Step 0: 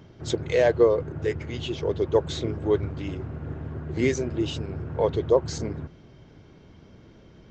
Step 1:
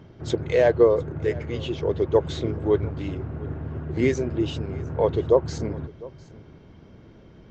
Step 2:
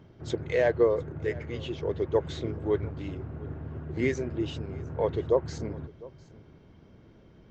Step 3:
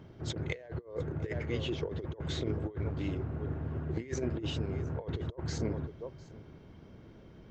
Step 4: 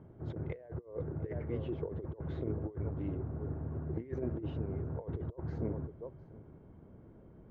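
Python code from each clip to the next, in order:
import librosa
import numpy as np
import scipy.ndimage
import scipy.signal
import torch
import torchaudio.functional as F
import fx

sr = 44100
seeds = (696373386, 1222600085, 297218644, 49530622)

y1 = fx.high_shelf(x, sr, hz=3500.0, db=-8.0)
y1 = y1 + 10.0 ** (-21.0 / 20.0) * np.pad(y1, (int(704 * sr / 1000.0), 0))[:len(y1)]
y1 = y1 * 10.0 ** (2.0 / 20.0)
y2 = fx.dynamic_eq(y1, sr, hz=1900.0, q=2.4, threshold_db=-45.0, ratio=4.0, max_db=5)
y2 = y2 * 10.0 ** (-6.0 / 20.0)
y3 = fx.over_compress(y2, sr, threshold_db=-32.0, ratio=-0.5)
y3 = y3 * 10.0 ** (-2.0 / 20.0)
y4 = scipy.signal.sosfilt(scipy.signal.butter(2, 1100.0, 'lowpass', fs=sr, output='sos'), y3)
y4 = y4 * 10.0 ** (-2.5 / 20.0)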